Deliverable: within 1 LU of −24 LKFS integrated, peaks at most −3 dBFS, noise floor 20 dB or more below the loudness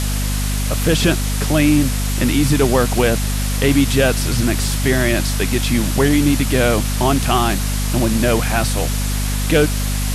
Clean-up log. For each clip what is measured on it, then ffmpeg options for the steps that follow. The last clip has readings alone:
mains hum 50 Hz; hum harmonics up to 250 Hz; level of the hum −17 dBFS; background noise floor −20 dBFS; target noise floor −37 dBFS; integrated loudness −17.0 LKFS; sample peak −2.5 dBFS; target loudness −24.0 LKFS
→ -af "bandreject=frequency=50:width_type=h:width=4,bandreject=frequency=100:width_type=h:width=4,bandreject=frequency=150:width_type=h:width=4,bandreject=frequency=200:width_type=h:width=4,bandreject=frequency=250:width_type=h:width=4"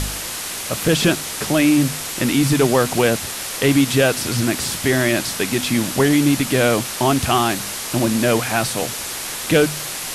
mains hum none found; background noise floor −28 dBFS; target noise floor −39 dBFS
→ -af "afftdn=noise_reduction=11:noise_floor=-28"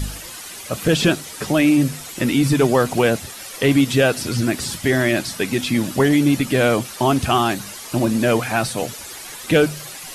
background noise floor −35 dBFS; target noise floor −39 dBFS
→ -af "afftdn=noise_reduction=6:noise_floor=-35"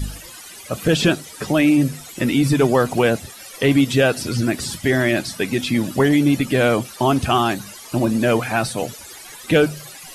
background noise floor −39 dBFS; integrated loudness −19.0 LKFS; sample peak −4.5 dBFS; target loudness −24.0 LKFS
→ -af "volume=-5dB"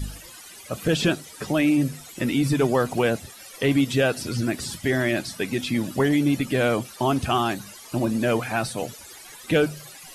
integrated loudness −24.0 LKFS; sample peak −9.5 dBFS; background noise floor −44 dBFS

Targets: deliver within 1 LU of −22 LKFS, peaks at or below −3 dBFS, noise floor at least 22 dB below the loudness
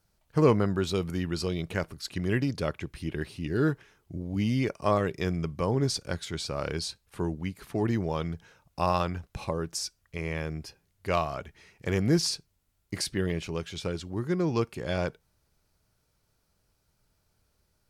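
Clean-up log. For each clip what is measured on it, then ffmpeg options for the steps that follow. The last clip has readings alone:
integrated loudness −30.0 LKFS; sample peak −8.5 dBFS; target loudness −22.0 LKFS
→ -af "volume=8dB,alimiter=limit=-3dB:level=0:latency=1"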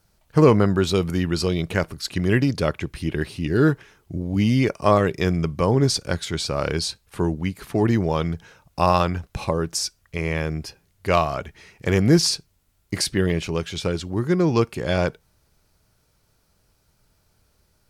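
integrated loudness −22.5 LKFS; sample peak −3.0 dBFS; background noise floor −65 dBFS

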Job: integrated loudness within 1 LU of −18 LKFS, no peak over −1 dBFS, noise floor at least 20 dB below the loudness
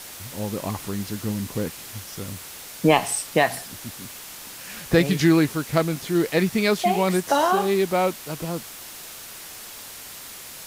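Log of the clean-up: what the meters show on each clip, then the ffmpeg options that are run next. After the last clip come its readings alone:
background noise floor −40 dBFS; target noise floor −43 dBFS; integrated loudness −23.0 LKFS; sample peak −2.5 dBFS; target loudness −18.0 LKFS
→ -af "afftdn=noise_reduction=6:noise_floor=-40"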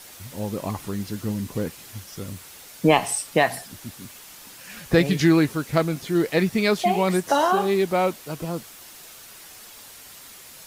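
background noise floor −45 dBFS; integrated loudness −23.0 LKFS; sample peak −2.5 dBFS; target loudness −18.0 LKFS
→ -af "volume=5dB,alimiter=limit=-1dB:level=0:latency=1"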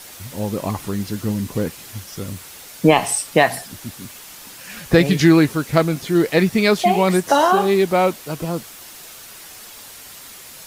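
integrated loudness −18.0 LKFS; sample peak −1.0 dBFS; background noise floor −40 dBFS

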